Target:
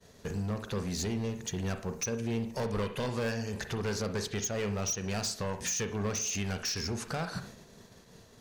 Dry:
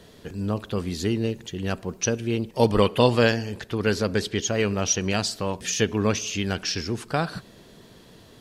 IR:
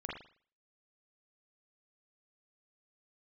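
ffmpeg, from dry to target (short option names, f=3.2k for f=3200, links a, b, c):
-filter_complex "[0:a]agate=range=-33dB:threshold=-42dB:ratio=3:detection=peak,equalizer=f=315:t=o:w=0.33:g=-8,equalizer=f=3.15k:t=o:w=0.33:g=-6,equalizer=f=6.3k:t=o:w=0.33:g=8,acompressor=threshold=-34dB:ratio=3,volume=31.5dB,asoftclip=hard,volume=-31.5dB,asplit=2[a][b];[1:a]atrim=start_sample=2205,afade=t=out:st=0.18:d=0.01,atrim=end_sample=8379[c];[b][c]afir=irnorm=-1:irlink=0,volume=-4.5dB[d];[a][d]amix=inputs=2:normalize=0"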